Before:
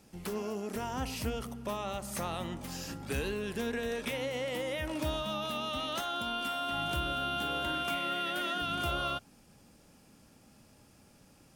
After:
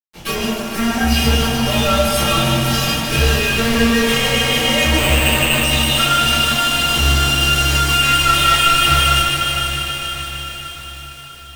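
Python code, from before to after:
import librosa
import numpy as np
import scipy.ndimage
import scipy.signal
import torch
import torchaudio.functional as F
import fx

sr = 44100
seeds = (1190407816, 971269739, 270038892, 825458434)

y = fx.peak_eq(x, sr, hz=3000.0, db=12.5, octaves=0.85)
y = fx.hum_notches(y, sr, base_hz=60, count=3)
y = fx.stiff_resonator(y, sr, f0_hz=68.0, decay_s=0.5, stiffness=0.03)
y = fx.fixed_phaser(y, sr, hz=660.0, stages=8, at=(0.49, 1.11))
y = fx.fuzz(y, sr, gain_db=51.0, gate_db=-56.0)
y = fx.echo_diffused(y, sr, ms=505, feedback_pct=60, wet_db=-7.5)
y = fx.room_shoebox(y, sr, seeds[0], volume_m3=50.0, walls='mixed', distance_m=2.4)
y = fx.resample_bad(y, sr, factor=8, down='none', up='hold', at=(4.98, 5.64))
y = fx.echo_crushed(y, sr, ms=152, feedback_pct=80, bits=4, wet_db=-8.0)
y = y * 10.0 ** (-14.0 / 20.0)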